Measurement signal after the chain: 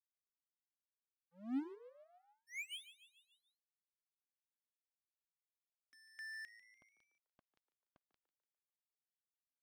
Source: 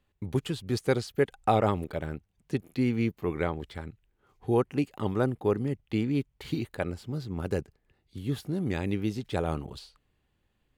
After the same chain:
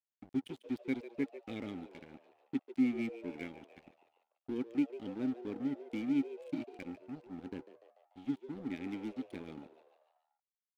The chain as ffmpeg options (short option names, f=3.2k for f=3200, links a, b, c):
-filter_complex "[0:a]asplit=3[a][b][c];[a]bandpass=f=270:t=q:w=8,volume=0dB[d];[b]bandpass=f=2.29k:t=q:w=8,volume=-6dB[e];[c]bandpass=f=3.01k:t=q:w=8,volume=-9dB[f];[d][e][f]amix=inputs=3:normalize=0,aeval=exprs='sgn(val(0))*max(abs(val(0))-0.00316,0)':c=same,asplit=6[g][h][i][j][k][l];[h]adelay=146,afreqshift=110,volume=-15dB[m];[i]adelay=292,afreqshift=220,volume=-20.2dB[n];[j]adelay=438,afreqshift=330,volume=-25.4dB[o];[k]adelay=584,afreqshift=440,volume=-30.6dB[p];[l]adelay=730,afreqshift=550,volume=-35.8dB[q];[g][m][n][o][p][q]amix=inputs=6:normalize=0,volume=2dB"